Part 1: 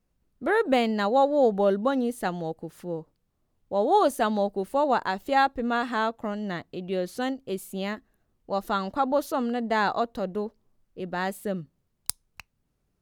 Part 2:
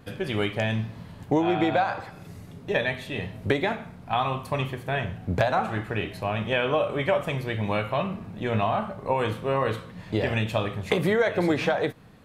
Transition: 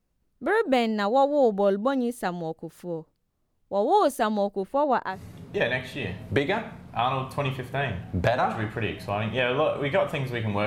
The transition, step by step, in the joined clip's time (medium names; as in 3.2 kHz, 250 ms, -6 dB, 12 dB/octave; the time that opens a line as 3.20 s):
part 1
4.63–5.22 s: tone controls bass +1 dB, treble -11 dB
5.13 s: go over to part 2 from 2.27 s, crossfade 0.18 s